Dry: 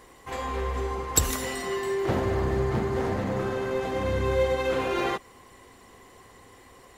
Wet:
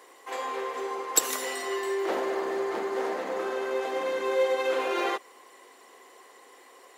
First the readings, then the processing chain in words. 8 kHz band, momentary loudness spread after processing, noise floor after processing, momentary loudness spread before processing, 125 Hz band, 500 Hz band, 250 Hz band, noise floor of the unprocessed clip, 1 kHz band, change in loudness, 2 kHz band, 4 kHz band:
0.0 dB, 8 LU, −54 dBFS, 6 LU, below −30 dB, −1.0 dB, −6.0 dB, −53 dBFS, 0.0 dB, −1.5 dB, 0.0 dB, 0.0 dB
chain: high-pass filter 350 Hz 24 dB per octave

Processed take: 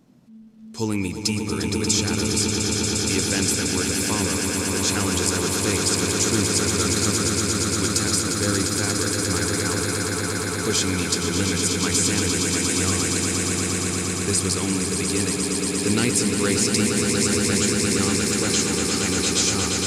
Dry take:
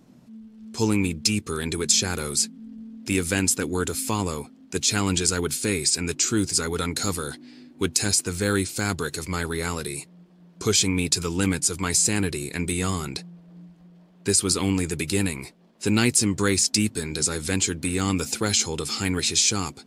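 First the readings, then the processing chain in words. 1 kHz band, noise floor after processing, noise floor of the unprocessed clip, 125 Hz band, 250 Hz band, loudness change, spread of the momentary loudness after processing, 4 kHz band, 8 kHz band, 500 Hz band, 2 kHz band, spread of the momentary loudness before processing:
+3.0 dB, −27 dBFS, −53 dBFS, +2.5 dB, +3.0 dB, +2.5 dB, 4 LU, +3.0 dB, +3.0 dB, +3.5 dB, +3.5 dB, 10 LU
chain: echo that builds up and dies away 117 ms, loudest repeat 8, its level −7 dB
level −2.5 dB

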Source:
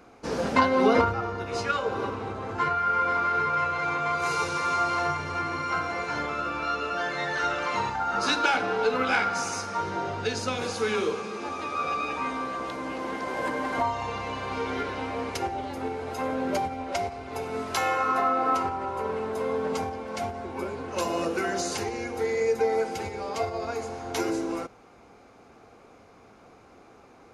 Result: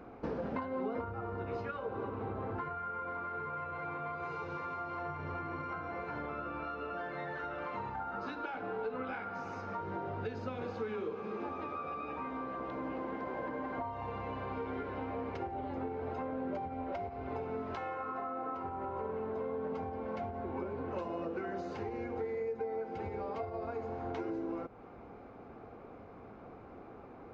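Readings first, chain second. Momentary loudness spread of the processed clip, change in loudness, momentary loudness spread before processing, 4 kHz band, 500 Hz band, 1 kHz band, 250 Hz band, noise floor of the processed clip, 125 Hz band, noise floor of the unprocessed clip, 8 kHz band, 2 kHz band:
3 LU, −11.5 dB, 9 LU, −23.5 dB, −9.5 dB, −12.5 dB, −8.5 dB, −52 dBFS, −6.5 dB, −53 dBFS, below −30 dB, −15.5 dB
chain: downward compressor 6 to 1, threshold −38 dBFS, peak gain reduction 20.5 dB
head-to-tape spacing loss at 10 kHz 44 dB
level +4.5 dB

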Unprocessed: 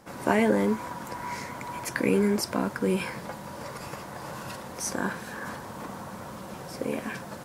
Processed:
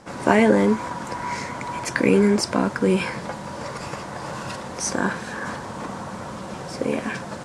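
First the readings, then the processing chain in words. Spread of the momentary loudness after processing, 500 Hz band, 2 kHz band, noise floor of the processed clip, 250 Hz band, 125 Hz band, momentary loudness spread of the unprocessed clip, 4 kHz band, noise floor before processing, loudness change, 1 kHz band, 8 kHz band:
15 LU, +6.5 dB, +6.5 dB, −35 dBFS, +6.5 dB, +6.5 dB, 15 LU, +6.5 dB, −41 dBFS, +6.5 dB, +6.5 dB, +5.5 dB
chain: low-pass filter 9,000 Hz 24 dB per octave
level +6.5 dB

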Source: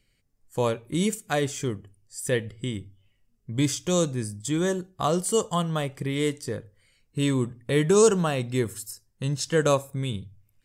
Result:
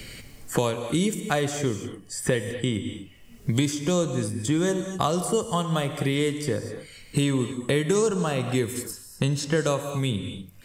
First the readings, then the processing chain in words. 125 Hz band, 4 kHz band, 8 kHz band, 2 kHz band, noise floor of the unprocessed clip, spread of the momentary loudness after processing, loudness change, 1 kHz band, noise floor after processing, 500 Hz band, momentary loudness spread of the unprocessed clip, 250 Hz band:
+1.5 dB, +2.0 dB, −0.5 dB, +1.5 dB, −69 dBFS, 10 LU, 0.0 dB, +0.5 dB, −48 dBFS, −1.0 dB, 13 LU, +1.5 dB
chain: reverb whose tail is shaped and stops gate 270 ms flat, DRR 9.5 dB
multiband upward and downward compressor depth 100%

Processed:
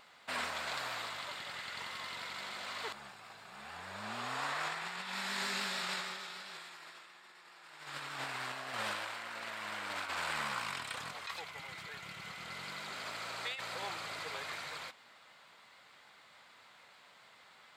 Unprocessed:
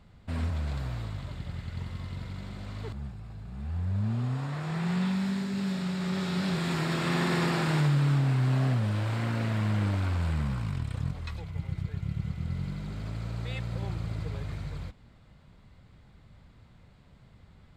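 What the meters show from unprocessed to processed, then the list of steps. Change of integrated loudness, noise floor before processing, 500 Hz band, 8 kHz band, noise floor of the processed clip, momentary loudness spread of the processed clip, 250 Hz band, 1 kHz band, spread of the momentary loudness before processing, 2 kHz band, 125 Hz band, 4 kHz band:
−9.0 dB, −56 dBFS, −9.0 dB, +1.5 dB, −61 dBFS, 22 LU, −22.5 dB, −1.5 dB, 13 LU, 0.0 dB, −30.0 dB, +1.0 dB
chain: high-pass filter 940 Hz 12 dB per octave
pitch vibrato 6.8 Hz 34 cents
compressor whose output falls as the input rises −45 dBFS, ratio −0.5
level +5 dB

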